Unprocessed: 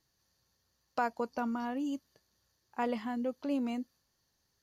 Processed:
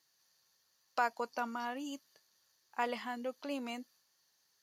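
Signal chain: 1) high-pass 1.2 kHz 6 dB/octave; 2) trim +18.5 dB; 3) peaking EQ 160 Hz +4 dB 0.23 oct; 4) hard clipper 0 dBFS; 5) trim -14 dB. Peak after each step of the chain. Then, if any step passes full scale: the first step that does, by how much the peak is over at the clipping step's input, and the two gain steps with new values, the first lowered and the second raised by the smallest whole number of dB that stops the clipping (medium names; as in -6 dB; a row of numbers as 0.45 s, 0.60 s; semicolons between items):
-23.5 dBFS, -5.0 dBFS, -5.0 dBFS, -5.0 dBFS, -19.0 dBFS; nothing clips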